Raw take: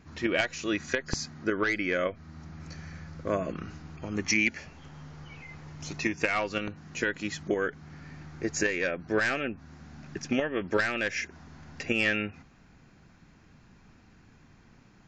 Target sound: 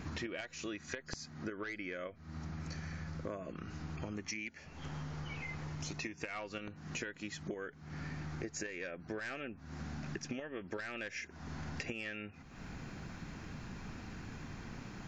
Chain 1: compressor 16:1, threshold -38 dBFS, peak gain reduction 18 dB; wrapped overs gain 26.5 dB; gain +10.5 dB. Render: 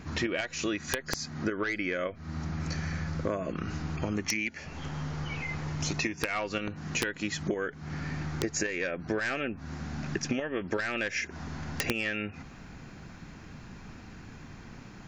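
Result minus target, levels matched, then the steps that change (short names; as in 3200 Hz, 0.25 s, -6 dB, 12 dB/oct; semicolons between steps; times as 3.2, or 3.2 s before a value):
compressor: peak gain reduction -11 dB
change: compressor 16:1, threshold -49.5 dBFS, peak gain reduction 29 dB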